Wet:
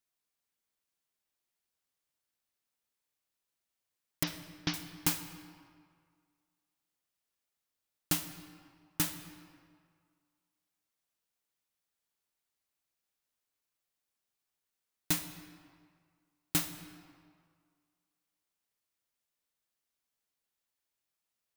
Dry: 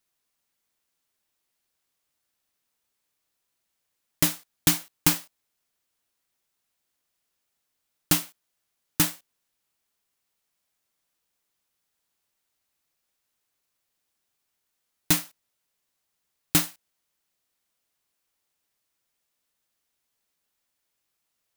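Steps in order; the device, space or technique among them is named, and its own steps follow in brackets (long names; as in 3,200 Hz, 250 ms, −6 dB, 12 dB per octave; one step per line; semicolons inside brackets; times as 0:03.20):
0:04.23–0:04.74: elliptic low-pass filter 5,600 Hz
saturated reverb return (on a send at −8.5 dB: convolution reverb RT60 1.9 s, pre-delay 46 ms + soft clipping −21 dBFS, distortion −17 dB)
on the sum: level −9 dB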